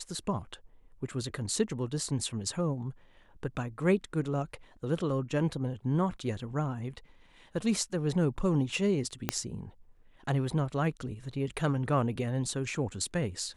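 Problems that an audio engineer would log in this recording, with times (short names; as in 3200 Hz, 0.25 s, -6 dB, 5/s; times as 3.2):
9.29 pop -11 dBFS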